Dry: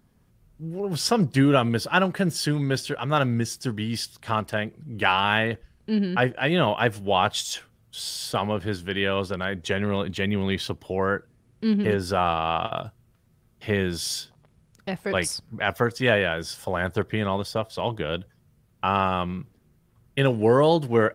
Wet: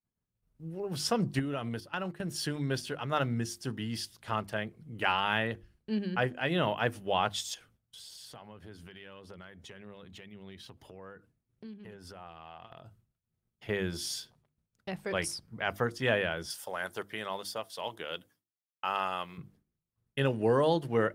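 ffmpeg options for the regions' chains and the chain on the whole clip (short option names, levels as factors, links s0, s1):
-filter_complex "[0:a]asettb=1/sr,asplit=3[s0][s1][s2];[s0]atrim=end=1.394[s3];[s1]atrim=start=1.39:end=2.32,asetpts=PTS-STARTPTS,afade=t=in:d=0.004:c=qsin,afade=t=out:st=0.926:d=0.004:c=qsin,agate=range=0.224:threshold=0.0398:ratio=16:release=100:detection=peak,acompressor=threshold=0.0708:ratio=5:attack=3.2:release=140:knee=1:detection=peak[s4];[s2]atrim=start=2.316[s5];[s3][s4]acrossfade=d=0.004:c1=hsin:c2=qsin[s6];[s6][s5]acrossfade=d=0.004:c1=qsin:c2=hsin,asettb=1/sr,asplit=3[s7][s8][s9];[s7]atrim=end=7.544[s10];[s8]atrim=start=7.54:end=13.69,asetpts=PTS-STARTPTS,afade=t=in:d=0.004:c=qsin,afade=t=out:st=6.146:d=0.004:c=qsin,acompressor=threshold=0.01:ratio=4:attack=3.2:release=140:knee=1:detection=peak,aphaser=in_gain=1:out_gain=1:delay=1.5:decay=0.22:speed=1.7:type=triangular[s11];[s9]atrim=start=13.686[s12];[s10][s11]acrossfade=d=0.004:c1=hsin:c2=qsin[s13];[s13][s12]acrossfade=d=0.004:c1=qsin:c2=hsin,asettb=1/sr,asplit=3[s14][s15][s16];[s14]atrim=end=16.504[s17];[s15]atrim=start=16.5:end=19.38,asetpts=PTS-STARTPTS,afade=t=in:d=0.004:c=qsin,afade=t=out:st=2.876:d=0.004:c=qsin,highpass=f=670:p=1,highshelf=f=6200:g=9.5[s18];[s16]atrim=start=19.376[s19];[s17][s18]acrossfade=d=0.004:c1=hsin:c2=qsin[s20];[s20][s19]acrossfade=d=0.004:c1=qsin:c2=hsin,agate=range=0.0224:threshold=0.00355:ratio=3:detection=peak,bandreject=f=50:t=h:w=6,bandreject=f=100:t=h:w=6,bandreject=f=150:t=h:w=6,bandreject=f=200:t=h:w=6,bandreject=f=250:t=h:w=6,bandreject=f=300:t=h:w=6,bandreject=f=350:t=h:w=6,volume=0.422"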